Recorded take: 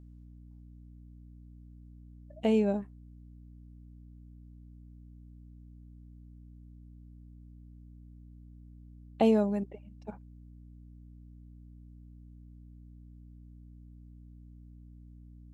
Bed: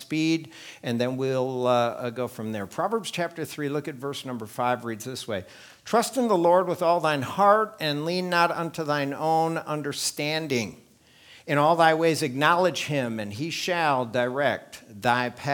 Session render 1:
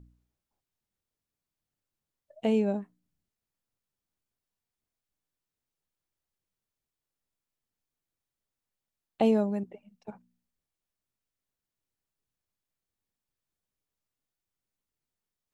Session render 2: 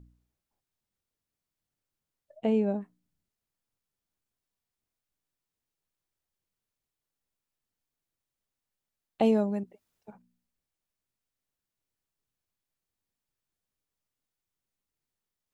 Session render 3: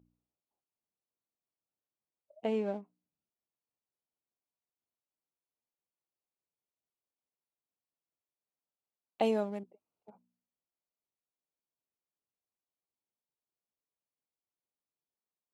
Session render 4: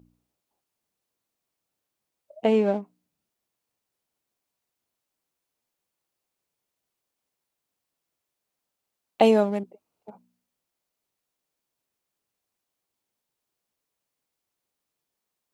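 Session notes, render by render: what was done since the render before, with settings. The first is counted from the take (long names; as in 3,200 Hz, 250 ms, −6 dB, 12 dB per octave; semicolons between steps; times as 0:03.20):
hum removal 60 Hz, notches 5
0:02.39–0:02.81: high-shelf EQ 3,100 Hz −11.5 dB; 0:09.70–0:10.10: fill with room tone, crossfade 0.24 s
adaptive Wiener filter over 25 samples; high-pass filter 600 Hz 6 dB per octave
level +11.5 dB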